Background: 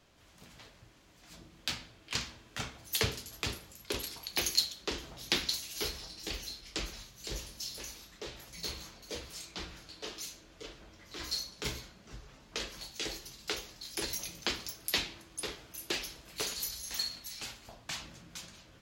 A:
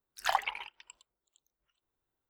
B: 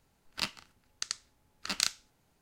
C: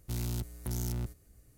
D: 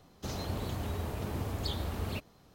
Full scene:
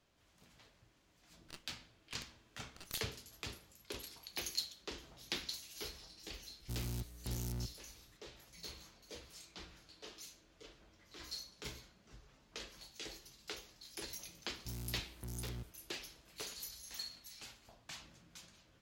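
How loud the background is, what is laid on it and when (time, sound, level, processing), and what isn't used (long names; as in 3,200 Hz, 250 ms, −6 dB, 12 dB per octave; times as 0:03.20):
background −10 dB
0:01.11: mix in B −16 dB + half-wave rectification
0:06.60: mix in C −6.5 dB
0:14.57: mix in C −10.5 dB
not used: A, D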